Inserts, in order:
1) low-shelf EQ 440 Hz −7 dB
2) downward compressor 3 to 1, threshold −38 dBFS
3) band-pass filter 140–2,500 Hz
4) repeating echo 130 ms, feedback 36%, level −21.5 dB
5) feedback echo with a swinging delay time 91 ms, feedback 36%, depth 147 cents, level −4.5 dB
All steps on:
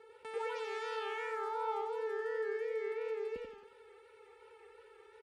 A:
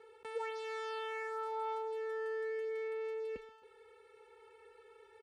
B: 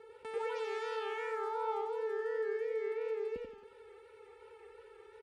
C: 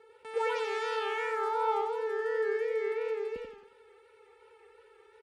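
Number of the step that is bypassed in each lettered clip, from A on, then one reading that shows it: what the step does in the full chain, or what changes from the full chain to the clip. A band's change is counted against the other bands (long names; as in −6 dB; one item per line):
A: 5, change in integrated loudness −1.5 LU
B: 1, change in momentary loudness spread −1 LU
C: 2, average gain reduction 4.0 dB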